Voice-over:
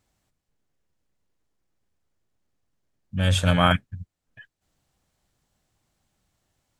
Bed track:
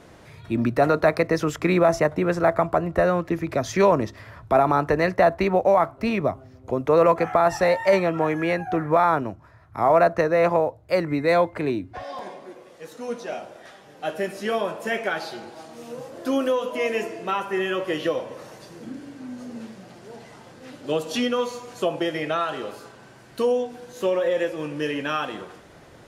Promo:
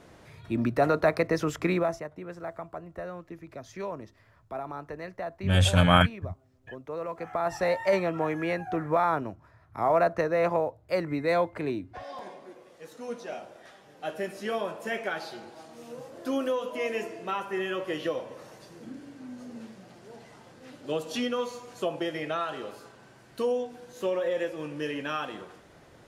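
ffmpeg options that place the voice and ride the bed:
-filter_complex "[0:a]adelay=2300,volume=-0.5dB[a];[1:a]volume=7.5dB,afade=t=out:st=1.64:d=0.39:silence=0.211349,afade=t=in:st=7.11:d=0.62:silence=0.251189[b];[a][b]amix=inputs=2:normalize=0"

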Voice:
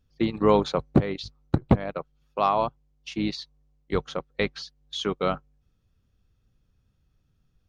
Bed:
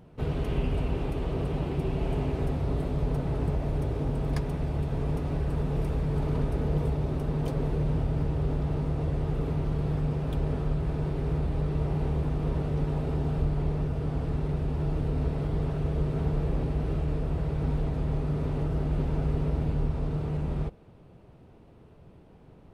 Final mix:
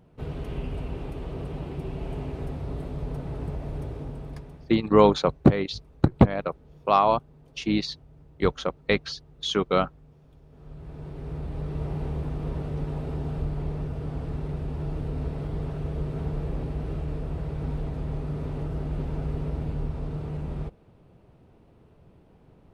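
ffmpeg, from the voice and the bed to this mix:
-filter_complex "[0:a]adelay=4500,volume=3dB[a];[1:a]volume=18.5dB,afade=t=out:st=3.82:d=0.96:silence=0.0891251,afade=t=in:st=10.5:d=1.34:silence=0.0707946[b];[a][b]amix=inputs=2:normalize=0"

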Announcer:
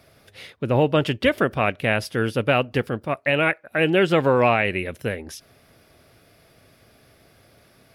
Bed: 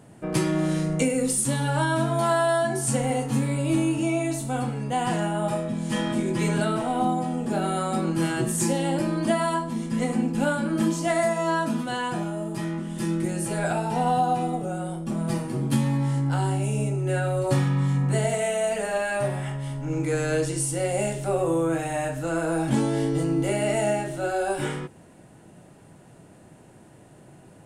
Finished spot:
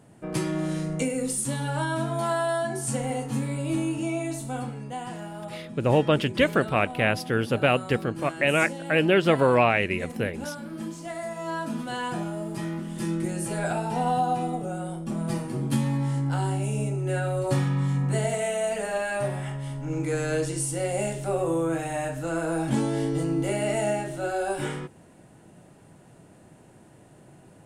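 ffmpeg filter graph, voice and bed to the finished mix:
-filter_complex "[0:a]adelay=5150,volume=-2dB[a];[1:a]volume=5.5dB,afade=t=out:st=4.5:d=0.63:silence=0.421697,afade=t=in:st=11.23:d=0.85:silence=0.334965[b];[a][b]amix=inputs=2:normalize=0"

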